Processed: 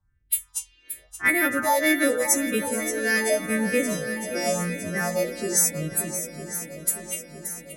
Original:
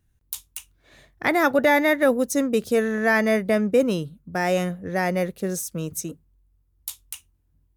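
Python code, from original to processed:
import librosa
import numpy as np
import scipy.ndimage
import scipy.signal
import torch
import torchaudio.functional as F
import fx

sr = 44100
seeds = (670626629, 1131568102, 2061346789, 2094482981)

p1 = fx.freq_snap(x, sr, grid_st=2)
p2 = fx.env_lowpass(p1, sr, base_hz=2000.0, full_db=-20.0)
p3 = fx.rev_spring(p2, sr, rt60_s=2.0, pass_ms=(38, 42), chirp_ms=45, drr_db=11.5)
p4 = fx.phaser_stages(p3, sr, stages=4, low_hz=130.0, high_hz=1000.0, hz=0.88, feedback_pct=35)
y = p4 + fx.echo_swing(p4, sr, ms=959, ratio=1.5, feedback_pct=56, wet_db=-11.0, dry=0)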